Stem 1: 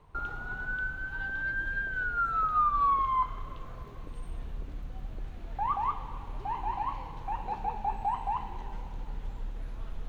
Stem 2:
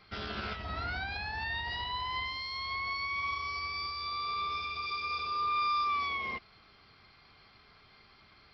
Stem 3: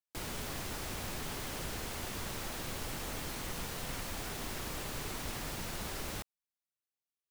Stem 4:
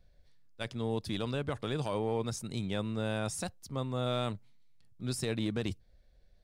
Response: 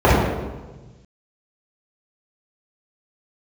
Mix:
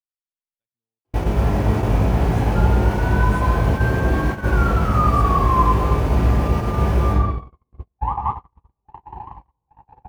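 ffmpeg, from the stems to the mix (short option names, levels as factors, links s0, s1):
-filter_complex "[0:a]adelay=2400,volume=0.841,asplit=2[s0][s1];[s1]volume=0.0944[s2];[1:a]equalizer=f=125:t=o:w=1:g=12,equalizer=f=250:t=o:w=1:g=11,equalizer=f=500:t=o:w=1:g=4,equalizer=f=1000:t=o:w=1:g=12,equalizer=f=2000:t=o:w=1:g=-8,adelay=1250,volume=0.106,asplit=2[s3][s4];[s4]volume=0.237[s5];[2:a]alimiter=level_in=3.16:limit=0.0631:level=0:latency=1:release=23,volume=0.316,flanger=delay=18:depth=2:speed=0.74,adelay=900,volume=0.841,asplit=2[s6][s7];[s7]volume=0.562[s8];[3:a]acompressor=threshold=0.0141:ratio=6,volume=0.473[s9];[4:a]atrim=start_sample=2205[s10];[s2][s5][s8]amix=inputs=3:normalize=0[s11];[s11][s10]afir=irnorm=-1:irlink=0[s12];[s0][s3][s6][s9][s12]amix=inputs=5:normalize=0,agate=range=0.00316:threshold=0.112:ratio=16:detection=peak"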